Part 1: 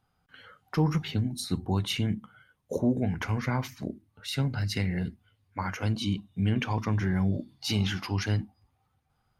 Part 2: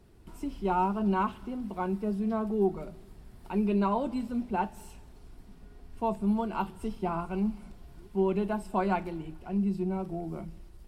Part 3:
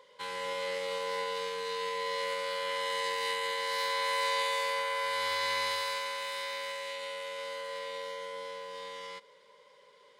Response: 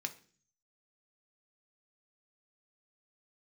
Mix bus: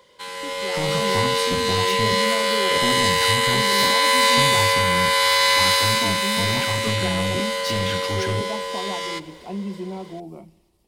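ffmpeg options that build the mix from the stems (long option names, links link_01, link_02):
-filter_complex "[0:a]volume=27dB,asoftclip=hard,volume=-27dB,volume=-6dB[link_01];[1:a]highpass=frequency=320:poles=1,equalizer=frequency=1500:width_type=o:width=0.47:gain=-14.5,alimiter=level_in=6.5dB:limit=-24dB:level=0:latency=1:release=404,volume=-6.5dB,volume=-2dB[link_02];[2:a]highshelf=frequency=4500:gain=8.5,volume=3dB[link_03];[link_01][link_02][link_03]amix=inputs=3:normalize=0,dynaudnorm=framelen=120:gausssize=13:maxgain=10dB"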